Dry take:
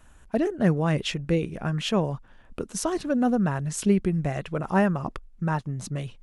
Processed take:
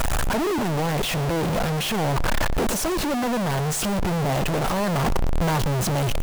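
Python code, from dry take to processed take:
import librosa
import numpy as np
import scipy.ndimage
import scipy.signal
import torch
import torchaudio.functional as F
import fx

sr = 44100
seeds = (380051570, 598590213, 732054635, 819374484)

p1 = np.sign(x) * np.sqrt(np.mean(np.square(x)))
p2 = fx.peak_eq(p1, sr, hz=660.0, db=6.5, octaves=1.7)
p3 = fx.rider(p2, sr, range_db=10, speed_s=0.5)
p4 = fx.low_shelf(p3, sr, hz=130.0, db=5.0)
y = p4 + fx.echo_single(p4, sr, ms=119, db=-20.0, dry=0)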